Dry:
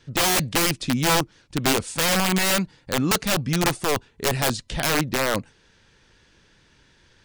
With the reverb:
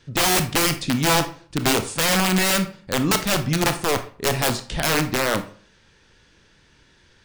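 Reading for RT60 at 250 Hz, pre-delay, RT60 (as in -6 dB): 0.50 s, 24 ms, 0.45 s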